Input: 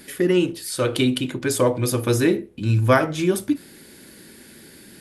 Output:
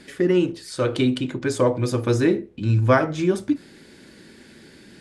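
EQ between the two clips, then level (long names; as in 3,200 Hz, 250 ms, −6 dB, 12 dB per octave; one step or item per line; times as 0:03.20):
dynamic equaliser 3,000 Hz, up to −4 dB, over −43 dBFS, Q 1.4
high-frequency loss of the air 110 metres
parametric band 8,300 Hz +4.5 dB 1.3 octaves
0.0 dB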